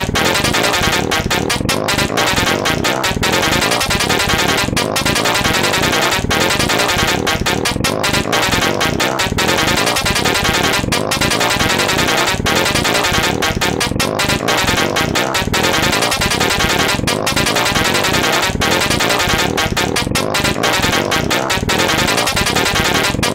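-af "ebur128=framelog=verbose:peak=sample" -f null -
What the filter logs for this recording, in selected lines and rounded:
Integrated loudness:
  I:         -13.6 LUFS
  Threshold: -23.6 LUFS
Loudness range:
  LRA:         0.8 LU
  Threshold: -33.6 LUFS
  LRA low:   -14.0 LUFS
  LRA high:  -13.2 LUFS
Sample peak:
  Peak:       -4.0 dBFS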